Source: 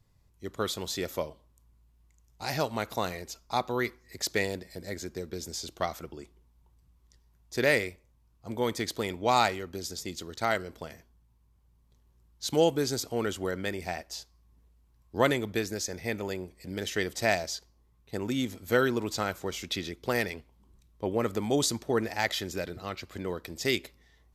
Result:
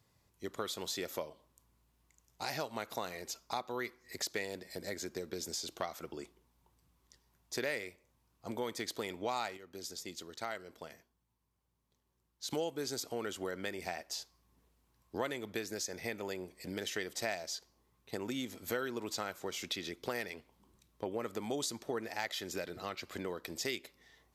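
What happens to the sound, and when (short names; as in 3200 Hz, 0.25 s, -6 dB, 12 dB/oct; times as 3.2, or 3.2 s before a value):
9.57–12.51 gain -8 dB
whole clip: HPF 290 Hz 6 dB/oct; compressor 3:1, threshold -40 dBFS; gain +2.5 dB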